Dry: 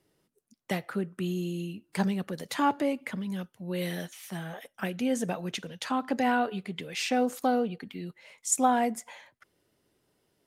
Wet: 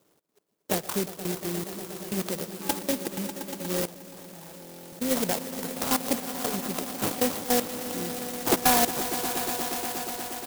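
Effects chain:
low-shelf EQ 320 Hz −6 dB
decimation without filtering 18×
Bessel high-pass filter 170 Hz, order 2
bass and treble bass 0 dB, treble +9 dB
single-tap delay 137 ms −22 dB
gate pattern "xx.x...xxxx..x." 156 BPM −24 dB
echo that builds up and dies away 119 ms, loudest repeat 5, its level −15 dB
soft clipping −18.5 dBFS, distortion −12 dB
0:03.81–0:05.11: output level in coarse steps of 17 dB
buffer that repeats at 0:04.60, samples 1,024, times 13
converter with an unsteady clock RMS 0.13 ms
level +7 dB

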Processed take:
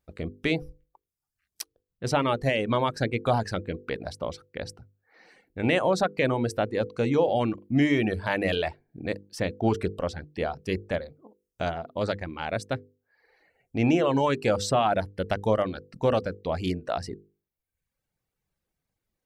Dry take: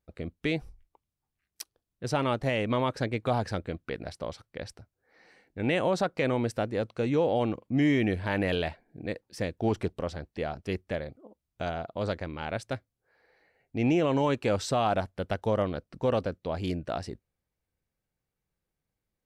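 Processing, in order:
reverb reduction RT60 0.86 s
mains-hum notches 50/100/150/200/250/300/350/400/450/500 Hz
level +4.5 dB

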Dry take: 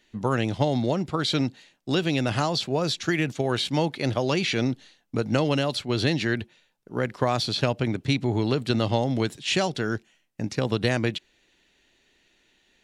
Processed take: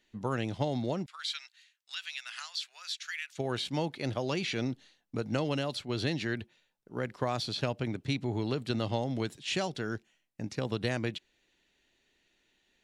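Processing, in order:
0:01.06–0:03.38: high-pass filter 1,500 Hz 24 dB per octave
level −8 dB

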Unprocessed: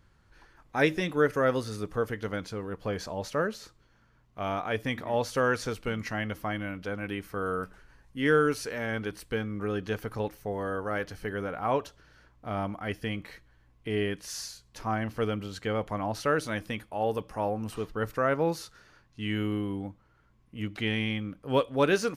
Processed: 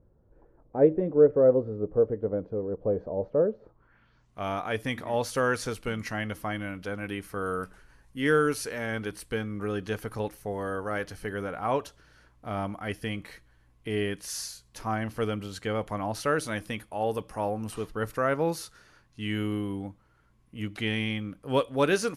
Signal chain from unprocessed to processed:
low-pass filter sweep 520 Hz → 11,000 Hz, 0:03.63–0:04.36

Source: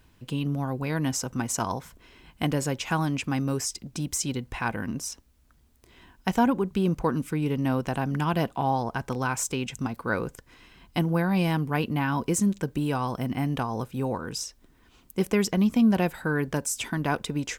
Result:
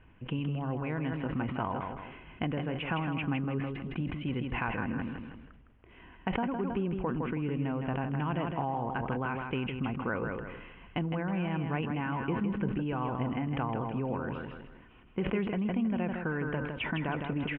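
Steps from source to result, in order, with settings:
Butterworth low-pass 3,000 Hz 72 dB per octave
downward compressor, threshold −30 dBFS, peak gain reduction 13 dB
on a send: repeating echo 160 ms, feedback 34%, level −6.5 dB
on the sum: level that may fall only so fast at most 38 dB per second

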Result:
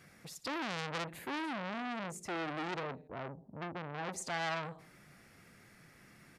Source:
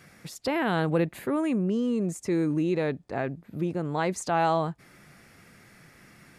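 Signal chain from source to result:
0:02.83–0:04.09: Chebyshev low-pass filter 890 Hz, order 4
on a send: repeating echo 61 ms, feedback 49%, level −18.5 dB
on the sum: saturating transformer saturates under 3,500 Hz
level −6 dB

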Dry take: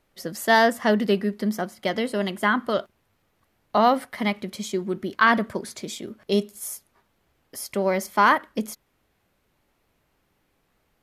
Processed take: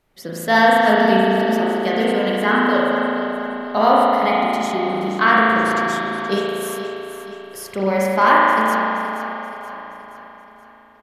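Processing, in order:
repeating echo 476 ms, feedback 51%, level −12 dB
spring reverb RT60 2.9 s, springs 36 ms, chirp 40 ms, DRR −6 dB

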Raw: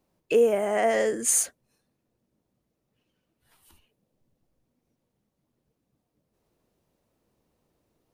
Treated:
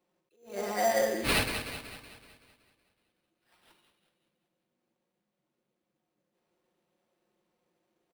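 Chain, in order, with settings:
high-pass filter 230 Hz 12 dB per octave
comb filter 5.6 ms, depth 100%
echo with a time of its own for lows and highs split 1,800 Hz, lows 86 ms, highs 188 ms, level −8 dB
sample-rate reduction 6,700 Hz, jitter 0%
level that may rise only so fast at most 160 dB per second
level −6.5 dB

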